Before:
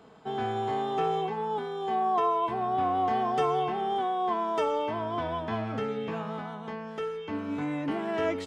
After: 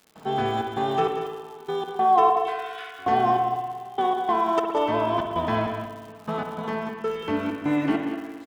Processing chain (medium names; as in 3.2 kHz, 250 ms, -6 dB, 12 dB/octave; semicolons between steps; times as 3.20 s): 2.40–2.99 s: steep high-pass 1.4 kHz 72 dB/octave; in parallel at -1 dB: peak limiter -26.5 dBFS, peak gain reduction 10 dB; on the sum: trance gate ".xxx.xx....x.xx" 98 bpm -24 dB; crackle 150 per s -42 dBFS; on a send: delay 189 ms -9.5 dB; on the sum: spring tank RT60 1.5 s, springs 57 ms, chirp 75 ms, DRR 4 dB; trim +2.5 dB